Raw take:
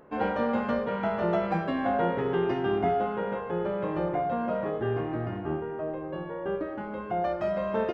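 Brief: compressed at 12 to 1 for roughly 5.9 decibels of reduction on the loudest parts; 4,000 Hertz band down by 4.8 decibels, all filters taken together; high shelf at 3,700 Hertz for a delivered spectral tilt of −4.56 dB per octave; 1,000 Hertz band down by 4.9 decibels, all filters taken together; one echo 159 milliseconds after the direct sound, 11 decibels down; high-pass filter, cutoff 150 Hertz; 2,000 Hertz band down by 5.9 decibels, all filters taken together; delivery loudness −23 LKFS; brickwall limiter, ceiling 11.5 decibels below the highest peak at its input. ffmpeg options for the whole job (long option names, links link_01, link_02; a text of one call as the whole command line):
ffmpeg -i in.wav -af "highpass=150,equalizer=frequency=1000:width_type=o:gain=-7,equalizer=frequency=2000:width_type=o:gain=-5,highshelf=frequency=3700:gain=7.5,equalizer=frequency=4000:width_type=o:gain=-8.5,acompressor=threshold=-30dB:ratio=12,alimiter=level_in=10.5dB:limit=-24dB:level=0:latency=1,volume=-10.5dB,aecho=1:1:159:0.282,volume=18.5dB" out.wav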